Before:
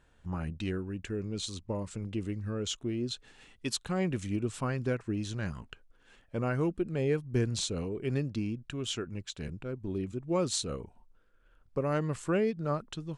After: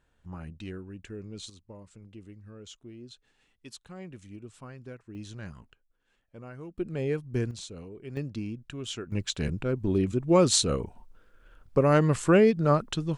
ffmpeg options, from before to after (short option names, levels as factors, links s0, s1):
-af "asetnsamples=n=441:p=0,asendcmd='1.5 volume volume -12.5dB;5.15 volume volume -6dB;5.72 volume volume -13dB;6.78 volume volume -0.5dB;7.51 volume volume -8.5dB;8.17 volume volume -1.5dB;9.12 volume volume 9dB',volume=0.531"